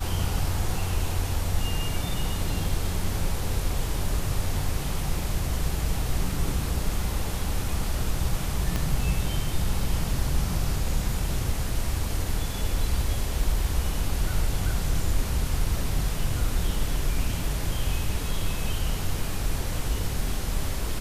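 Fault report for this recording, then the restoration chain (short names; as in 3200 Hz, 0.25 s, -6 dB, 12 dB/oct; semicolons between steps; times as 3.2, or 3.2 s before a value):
8.76 pop -13 dBFS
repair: de-click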